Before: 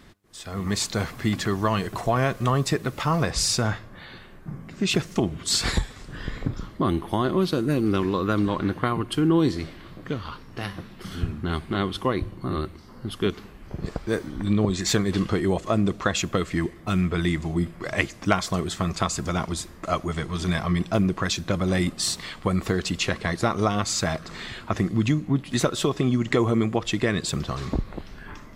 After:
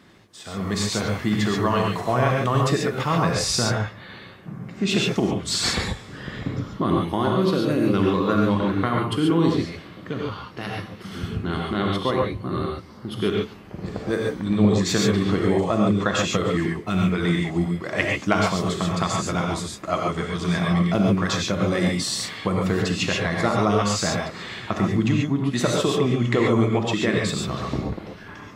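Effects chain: HPF 110 Hz; high shelf 6500 Hz -6.5 dB; non-linear reverb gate 0.16 s rising, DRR -1 dB

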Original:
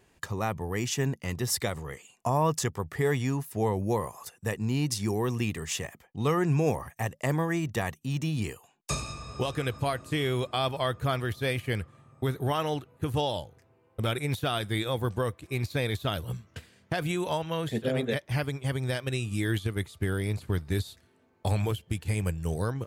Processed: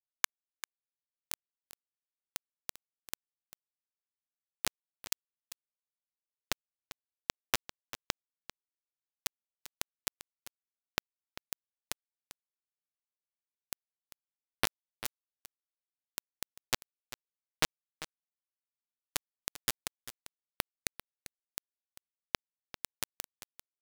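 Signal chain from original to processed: HPF 250 Hz 12 dB/oct; bell 340 Hz -13 dB 1.7 oct; compressor 12:1, threshold -39 dBFS, peak gain reduction 15.5 dB; soft clip -26.5 dBFS, distortion -27 dB; bit-crush 5-bit; echo 0.379 s -14.5 dB; speed mistake 25 fps video run at 24 fps; gain +16.5 dB

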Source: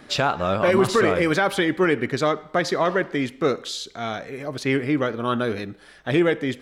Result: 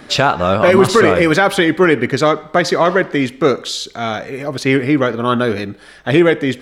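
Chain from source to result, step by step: 3.77–4.85 crackle 29/s -47 dBFS; gain +8 dB

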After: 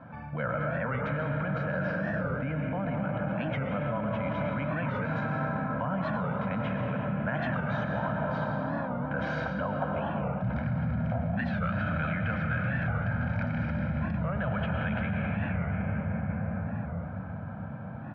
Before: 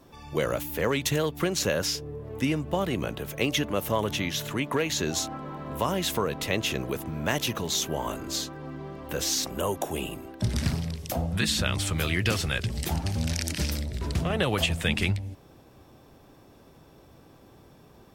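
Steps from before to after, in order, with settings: speaker cabinet 110–2000 Hz, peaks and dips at 130 Hz +6 dB, 200 Hz +7 dB, 370 Hz -9 dB, 850 Hz -8 dB, 1300 Hz +5 dB; reverb RT60 5.0 s, pre-delay 75 ms, DRR -0.5 dB; limiter -21 dBFS, peak gain reduction 9.5 dB; reverse; compressor 6:1, threshold -36 dBFS, peak gain reduction 11 dB; reverse; bell 1100 Hz +5 dB 1.4 oct; comb 1.3 ms, depth 73%; record warp 45 rpm, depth 160 cents; gain +5.5 dB

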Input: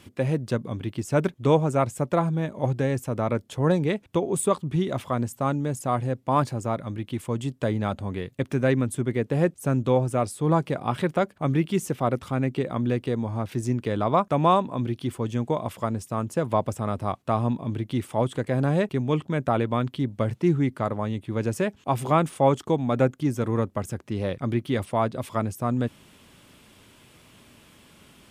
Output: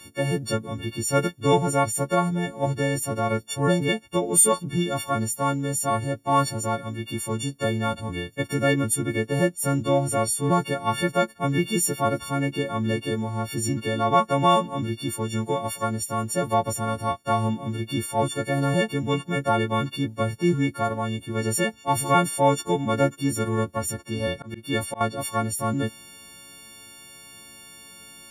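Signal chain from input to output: frequency quantiser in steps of 4 st; 24.32–25.01 auto swell 0.214 s

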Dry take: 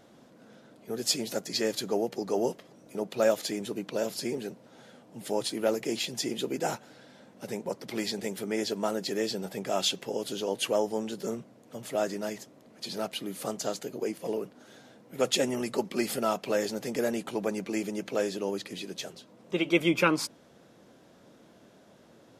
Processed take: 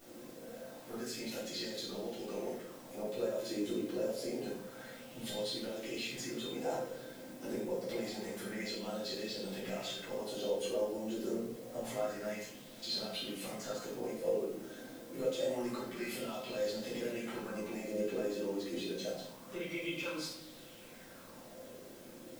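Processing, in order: compressor 3:1, threshold -38 dBFS, peak gain reduction 15 dB; limiter -31 dBFS, peak gain reduction 8.5 dB; resonator 520 Hz, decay 0.28 s, harmonics all, mix 80%; added noise white -69 dBFS; shoebox room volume 190 m³, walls mixed, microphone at 3.5 m; LFO bell 0.27 Hz 310–3900 Hz +9 dB

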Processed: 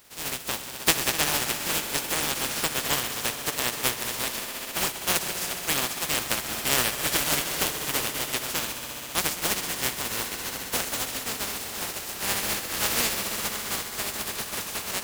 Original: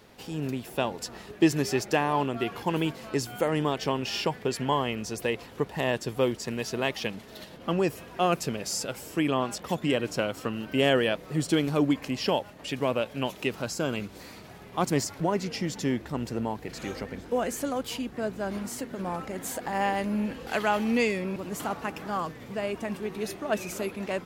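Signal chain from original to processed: spectral contrast lowered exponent 0.18; swelling echo 0.104 s, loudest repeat 5, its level -14.5 dB; granular stretch 0.62×, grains 0.136 s; gain +1 dB

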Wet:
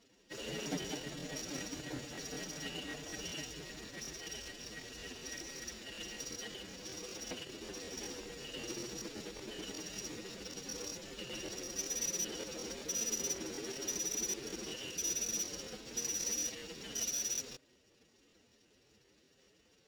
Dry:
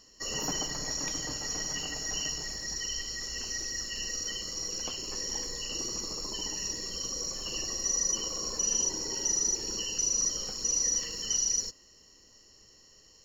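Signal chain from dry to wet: median filter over 41 samples; weighting filter D; time stretch by phase-locked vocoder 1.5×; crackling interface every 0.19 s, samples 1024, repeat, from 0.61; gain +1.5 dB

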